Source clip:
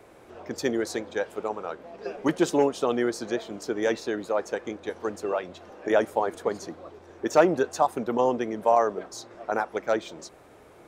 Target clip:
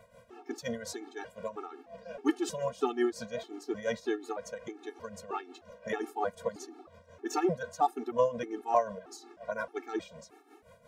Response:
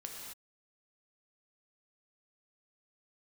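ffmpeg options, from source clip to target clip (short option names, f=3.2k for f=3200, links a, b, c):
-af "tremolo=f=5.6:d=0.71,afftfilt=real='re*gt(sin(2*PI*1.6*pts/sr)*(1-2*mod(floor(b*sr/1024/230),2)),0)':imag='im*gt(sin(2*PI*1.6*pts/sr)*(1-2*mod(floor(b*sr/1024/230),2)),0)':win_size=1024:overlap=0.75"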